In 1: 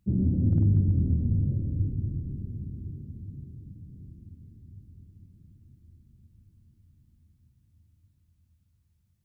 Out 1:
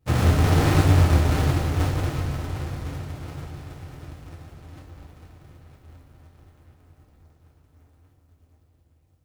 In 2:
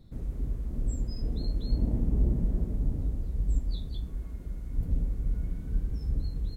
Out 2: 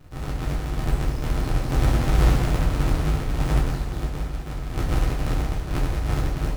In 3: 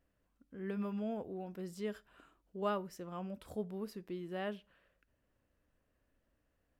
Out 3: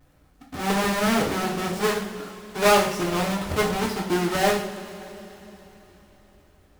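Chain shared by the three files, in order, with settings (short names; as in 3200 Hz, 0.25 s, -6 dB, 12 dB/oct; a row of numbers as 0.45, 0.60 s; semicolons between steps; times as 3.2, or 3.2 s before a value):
half-waves squared off; two-slope reverb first 0.49 s, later 3.9 s, from -18 dB, DRR -3.5 dB; Doppler distortion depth 0.15 ms; normalise peaks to -6 dBFS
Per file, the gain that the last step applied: -4.0, -2.0, +11.0 dB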